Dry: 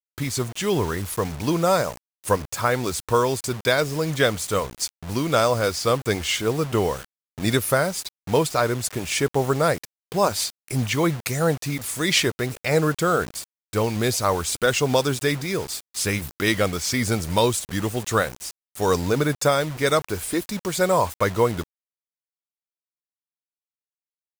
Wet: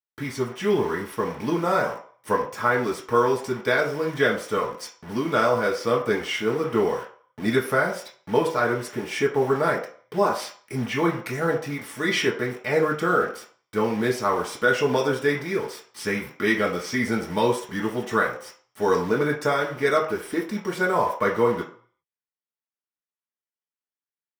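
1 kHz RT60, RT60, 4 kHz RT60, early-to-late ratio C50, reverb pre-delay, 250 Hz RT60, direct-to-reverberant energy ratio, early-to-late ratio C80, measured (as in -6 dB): 0.50 s, 0.50 s, 0.45 s, 9.0 dB, 3 ms, 0.40 s, -3.5 dB, 13.0 dB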